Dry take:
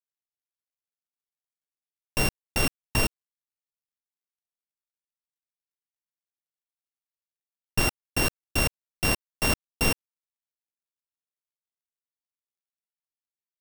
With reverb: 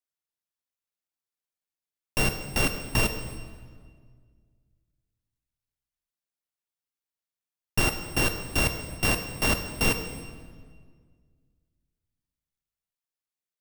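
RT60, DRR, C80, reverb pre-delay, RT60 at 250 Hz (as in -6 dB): 1.8 s, 7.0 dB, 10.0 dB, 8 ms, 2.2 s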